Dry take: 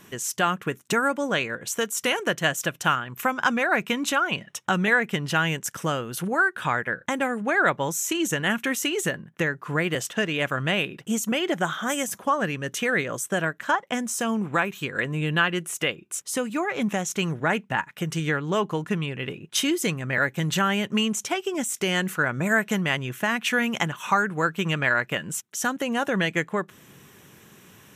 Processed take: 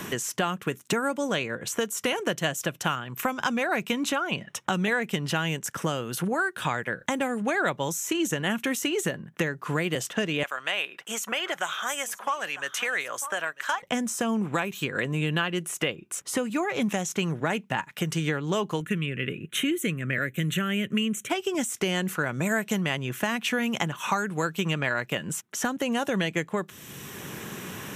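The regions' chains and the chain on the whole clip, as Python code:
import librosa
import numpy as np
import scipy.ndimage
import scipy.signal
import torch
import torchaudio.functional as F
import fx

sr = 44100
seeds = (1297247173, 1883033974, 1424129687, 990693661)

y = fx.chain(x, sr, fx.highpass(hz=920.0, slope=12),
    fx.echo_single(ms=946, db=-19.5), at=(10.43, 13.82))
y = fx.chain(y, sr, fx.highpass(hz=53.0, slope=12),
    fx.fixed_phaser(hz=2100.0, stages=4), at=(18.8, 21.3))
y = fx.dynamic_eq(y, sr, hz=1600.0, q=1.2, threshold_db=-33.0, ratio=4.0, max_db=-5)
y = fx.band_squash(y, sr, depth_pct=70)
y = F.gain(torch.from_numpy(y), -1.5).numpy()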